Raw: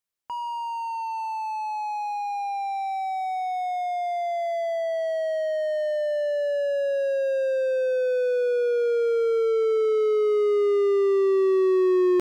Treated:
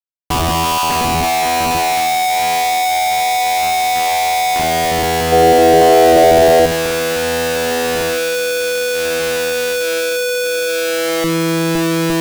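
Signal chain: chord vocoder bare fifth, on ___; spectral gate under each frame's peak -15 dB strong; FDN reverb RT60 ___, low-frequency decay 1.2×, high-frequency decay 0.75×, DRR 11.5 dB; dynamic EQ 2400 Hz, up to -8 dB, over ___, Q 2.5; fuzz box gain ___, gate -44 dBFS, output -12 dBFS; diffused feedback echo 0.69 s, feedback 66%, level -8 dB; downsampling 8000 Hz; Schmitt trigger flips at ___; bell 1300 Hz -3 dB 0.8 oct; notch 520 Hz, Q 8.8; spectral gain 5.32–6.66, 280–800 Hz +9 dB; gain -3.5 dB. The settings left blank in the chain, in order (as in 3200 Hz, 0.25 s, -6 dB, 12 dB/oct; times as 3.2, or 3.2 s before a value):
E3, 0.55 s, -54 dBFS, 44 dB, -14.5 dBFS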